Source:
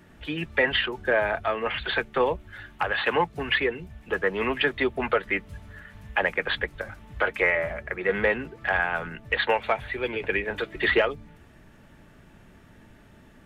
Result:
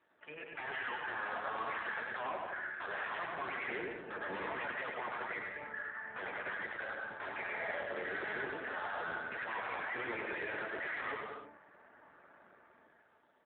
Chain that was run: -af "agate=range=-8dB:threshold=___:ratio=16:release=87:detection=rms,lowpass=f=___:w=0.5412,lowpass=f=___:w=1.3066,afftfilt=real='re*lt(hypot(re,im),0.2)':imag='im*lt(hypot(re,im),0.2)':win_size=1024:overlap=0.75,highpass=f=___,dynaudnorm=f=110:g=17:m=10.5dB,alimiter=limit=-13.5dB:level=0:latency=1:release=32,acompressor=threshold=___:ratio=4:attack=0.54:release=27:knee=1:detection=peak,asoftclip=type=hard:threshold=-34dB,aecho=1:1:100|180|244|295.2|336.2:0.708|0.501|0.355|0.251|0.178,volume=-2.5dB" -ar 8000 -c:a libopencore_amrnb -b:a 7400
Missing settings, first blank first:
-46dB, 1800, 1800, 560, -30dB